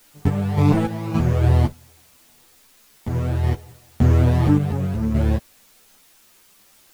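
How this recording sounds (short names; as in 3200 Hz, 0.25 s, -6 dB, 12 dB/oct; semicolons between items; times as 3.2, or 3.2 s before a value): random-step tremolo, depth 80%; a quantiser's noise floor 10-bit, dither triangular; a shimmering, thickened sound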